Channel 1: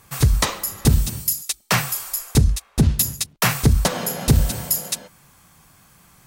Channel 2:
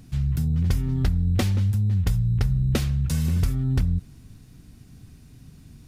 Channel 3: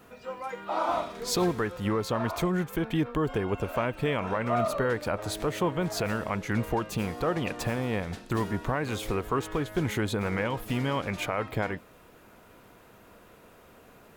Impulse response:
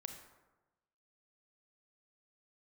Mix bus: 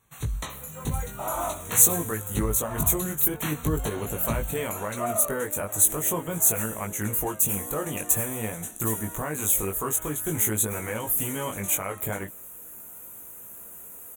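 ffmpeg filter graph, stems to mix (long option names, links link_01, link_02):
-filter_complex "[0:a]volume=-11.5dB[link_01];[1:a]adelay=300,volume=-19dB[link_02];[2:a]aexciter=amount=9.1:drive=9.6:freq=6700,adelay=500,volume=0.5dB[link_03];[link_01][link_02][link_03]amix=inputs=3:normalize=0,flanger=delay=18:depth=2.5:speed=0.46,asuperstop=centerf=5000:order=12:qfactor=3.2"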